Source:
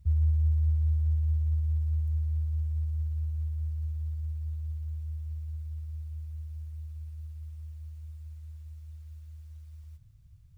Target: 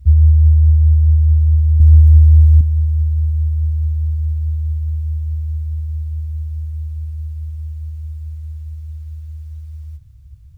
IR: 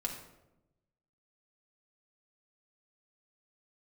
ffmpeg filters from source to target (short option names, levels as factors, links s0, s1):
-filter_complex "[0:a]equalizer=f=67:w=2.8:g=12,asettb=1/sr,asplit=3[s0][s1][s2];[s0]atrim=end=1.804[s3];[s1]atrim=start=1.8:end=2.61,asetpts=PTS-STARTPTS,afade=t=in:d=0.004:c=qsin,afade=t=out:st=0.806:d=0.004:c=qsin,acontrast=81[s4];[s2]atrim=start=2.606[s5];[s3][s4]acrossfade=d=0.004:c1=hsin:c2=qsin[s6];[s6][s5]acrossfade=d=0.004:c1=qsin:c2=hsin,volume=2.66"